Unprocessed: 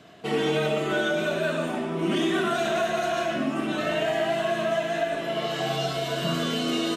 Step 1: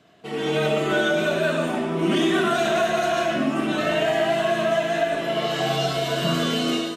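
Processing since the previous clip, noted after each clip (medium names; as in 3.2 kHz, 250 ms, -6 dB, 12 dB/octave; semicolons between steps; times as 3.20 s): level rider gain up to 11 dB; trim -6.5 dB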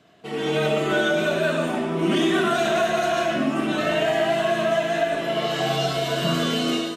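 no audible change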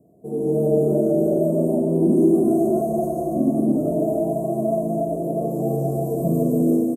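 inverse Chebyshev band-stop 1.8–3.6 kHz, stop band 80 dB; on a send: loudspeakers at several distances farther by 76 m -12 dB, 98 m -5 dB; on the sum: trim +4 dB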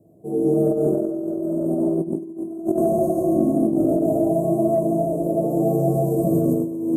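on a send at -2 dB: reverberation RT60 0.90 s, pre-delay 4 ms; on the sum: compressor with a negative ratio -17 dBFS, ratio -0.5; trim -2.5 dB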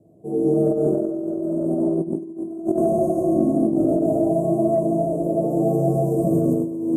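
Bessel low-pass 9.2 kHz, order 4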